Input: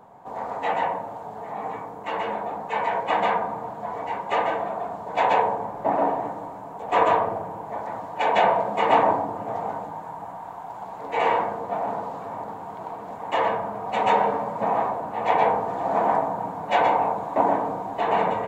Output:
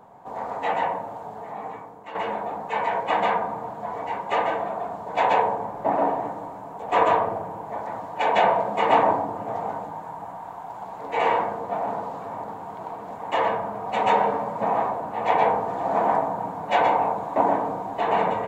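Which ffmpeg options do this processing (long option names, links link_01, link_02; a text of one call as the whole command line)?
ffmpeg -i in.wav -filter_complex "[0:a]asplit=2[link_01][link_02];[link_01]atrim=end=2.15,asetpts=PTS-STARTPTS,afade=type=out:start_time=1.26:duration=0.89:silence=0.316228[link_03];[link_02]atrim=start=2.15,asetpts=PTS-STARTPTS,afade=type=in:duration=0.004:curve=hsin:silence=0.316228[link_04];[link_03][link_04]concat=n=2:v=0:a=1" out.wav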